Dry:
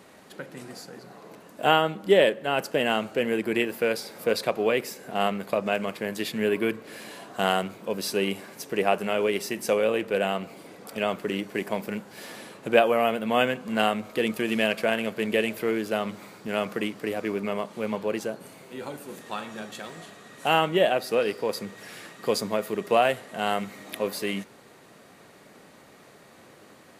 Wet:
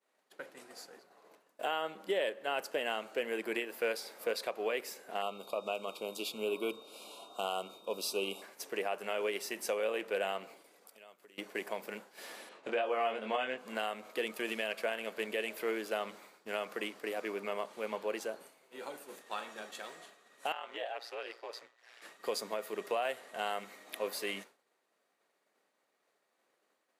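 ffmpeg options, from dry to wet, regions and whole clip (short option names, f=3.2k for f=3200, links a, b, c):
-filter_complex "[0:a]asettb=1/sr,asplit=3[a][b][c];[a]atrim=end=5.224[d];[b]atrim=start=5.22:end=8.42,asetpts=PTS-STARTPTS,afade=t=in:d=0.004:c=qsin,afade=t=out:st=3.196:d=0.004:c=qsin,aeval=exprs='val(0)+0.00316*sin(2*PI*3700*n/s)':c=same,asuperstop=centerf=1800:order=8:qfactor=1.8[e];[c]atrim=start=8.416[f];[d][e]acrossfade=d=0.004:c1=hsin:c2=qsin[g];[g][f]acrossfade=d=0.004:c1=qsin:c2=hsin,asettb=1/sr,asplit=3[h][i][j];[h]atrim=end=10.644[k];[i]atrim=start=10.64:end=11.38,asetpts=PTS-STARTPTS,afade=t=in:d=0.004:c=qsin,afade=t=out:st=0.736:d=0.004:c=qsin,aemphasis=mode=production:type=cd,acompressor=threshold=-42dB:ratio=6:attack=3.2:release=140:knee=1:detection=peak[l];[j]atrim=start=11.376[m];[k][l]acrossfade=d=0.004:c1=hsin:c2=qsin[n];[n][m]acrossfade=d=0.004:c1=qsin:c2=hsin,asettb=1/sr,asplit=3[o][p][q];[o]atrim=end=12.494[r];[p]atrim=start=12.49:end=13.58,asetpts=PTS-STARTPTS,afade=t=in:d=0.004:c=qsin,afade=t=out:st=1.086:d=0.004:c=qsin,highpass=100,lowpass=5.5k,asplit=2[s][t];[t]adelay=23,volume=-3dB[u];[s][u]amix=inputs=2:normalize=0,atrim=end_sample=48069[v];[q]atrim=start=13.576[w];[r][v]acrossfade=d=0.004:c1=hsin:c2=qsin[x];[x][w]acrossfade=d=0.004:c1=qsin:c2=hsin,asettb=1/sr,asplit=3[y][z][aa];[y]atrim=end=20.524[ab];[z]atrim=start=20.52:end=22.02,asetpts=PTS-STARTPTS,afade=t=in:d=0.004:c=qsin,afade=t=out:st=1.496:d=0.004:c=qsin,acrossover=split=490 6300:gain=0.158 1 0.178[ac][ad][ae];[ac][ad][ae]amix=inputs=3:normalize=0,aeval=exprs='val(0)*sin(2*PI*59*n/s)':c=same,acompressor=threshold=-33dB:ratio=2:attack=3.2:release=140:knee=1:detection=peak[af];[aa]atrim=start=22.016[ag];[ab][af]acrossfade=d=0.004:c1=hsin:c2=qsin[ah];[ah][ag]acrossfade=d=0.004:c1=qsin:c2=hsin,highpass=420,agate=range=-33dB:threshold=-41dB:ratio=3:detection=peak,alimiter=limit=-18dB:level=0:latency=1:release=241,volume=-5.5dB"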